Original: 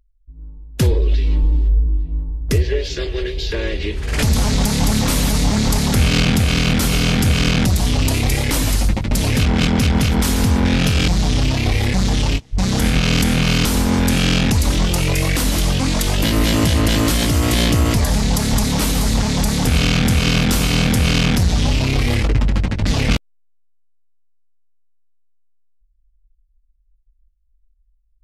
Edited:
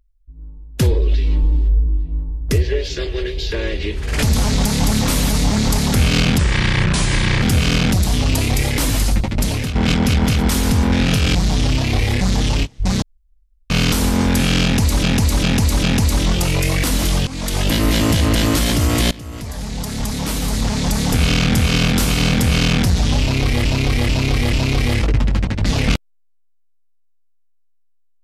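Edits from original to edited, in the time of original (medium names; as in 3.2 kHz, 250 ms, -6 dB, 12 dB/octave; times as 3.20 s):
6.38–7.15 s: speed 74%
9.13–9.48 s: fade out linear, to -10.5 dB
12.75–13.43 s: room tone
14.36–14.76 s: loop, 4 plays
15.80–16.15 s: fade in, from -16 dB
17.64–19.62 s: fade in, from -22 dB
21.74–22.18 s: loop, 4 plays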